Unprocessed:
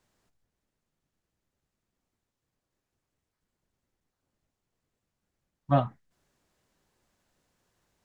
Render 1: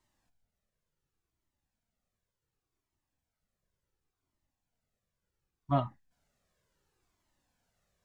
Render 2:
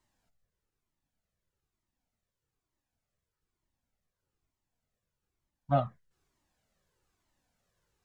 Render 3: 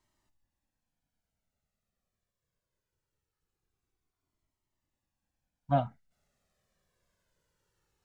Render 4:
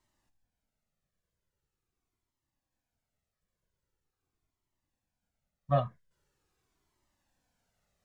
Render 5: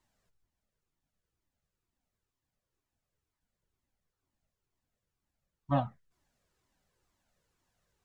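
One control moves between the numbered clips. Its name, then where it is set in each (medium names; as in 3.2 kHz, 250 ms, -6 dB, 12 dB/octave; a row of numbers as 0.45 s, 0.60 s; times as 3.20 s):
Shepard-style flanger, rate: 0.69 Hz, 1.1 Hz, 0.22 Hz, 0.43 Hz, 2.1 Hz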